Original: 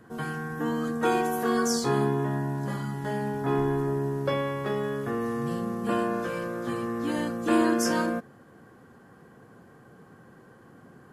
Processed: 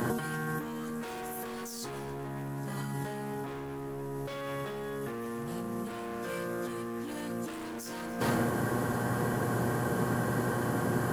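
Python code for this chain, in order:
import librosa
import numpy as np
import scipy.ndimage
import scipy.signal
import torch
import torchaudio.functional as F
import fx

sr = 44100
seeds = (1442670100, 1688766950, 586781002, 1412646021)

y = np.clip(x, -10.0 ** (-27.5 / 20.0), 10.0 ** (-27.5 / 20.0))
y = fx.high_shelf(y, sr, hz=7100.0, db=11.5)
y = y + 10.0 ** (-22.5 / 20.0) * np.pad(y, (int(286 * sr / 1000.0), 0))[:len(y)]
y = fx.dmg_buzz(y, sr, base_hz=120.0, harmonics=9, level_db=-55.0, tilt_db=-4, odd_only=False)
y = fx.over_compress(y, sr, threshold_db=-44.0, ratio=-1.0)
y = F.gain(torch.from_numpy(y), 9.0).numpy()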